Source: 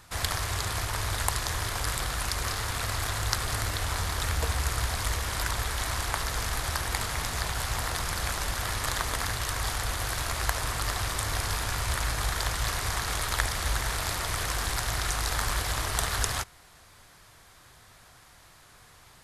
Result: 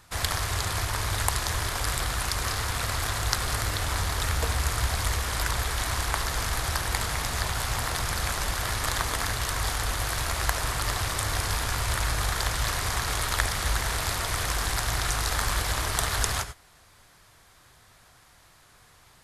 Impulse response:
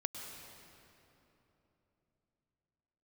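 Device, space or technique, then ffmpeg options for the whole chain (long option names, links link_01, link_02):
keyed gated reverb: -filter_complex "[0:a]asplit=3[link_01][link_02][link_03];[1:a]atrim=start_sample=2205[link_04];[link_02][link_04]afir=irnorm=-1:irlink=0[link_05];[link_03]apad=whole_len=848310[link_06];[link_05][link_06]sidechaingate=range=-33dB:threshold=-41dB:ratio=16:detection=peak,volume=-4dB[link_07];[link_01][link_07]amix=inputs=2:normalize=0,volume=-2dB"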